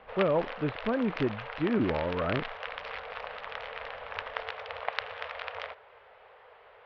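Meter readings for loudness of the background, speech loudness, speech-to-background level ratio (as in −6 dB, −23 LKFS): −38.5 LKFS, −30.5 LKFS, 8.0 dB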